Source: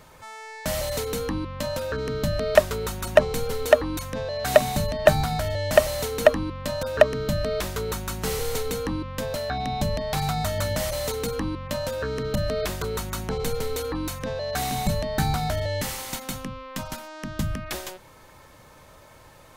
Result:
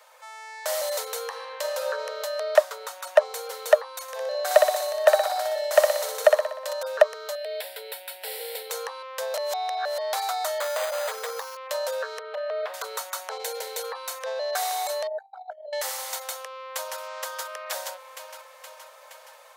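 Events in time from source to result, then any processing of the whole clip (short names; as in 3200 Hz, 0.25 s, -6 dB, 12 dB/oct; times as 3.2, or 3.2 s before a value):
1.22–1.81 reverb throw, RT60 2.1 s, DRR 3 dB
2.43–3.25 high shelf 6300 Hz -5.5 dB
4.02–6.73 feedback echo 61 ms, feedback 53%, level -4 dB
7.35–8.7 fixed phaser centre 2800 Hz, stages 4
9.37–9.98 reverse
10.6–11.57 careless resampling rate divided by 8×, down none, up hold
12.19–12.74 air absorption 400 m
13.38–13.84 Butterworth band-stop 1200 Hz, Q 3.5
15.07–15.73 formant sharpening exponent 3
16.28–17 echo throw 0.47 s, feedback 65%, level -1.5 dB
whole clip: steep high-pass 490 Hz 72 dB/oct; dynamic EQ 2600 Hz, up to -6 dB, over -45 dBFS, Q 1.9; AGC gain up to 3.5 dB; gain -2 dB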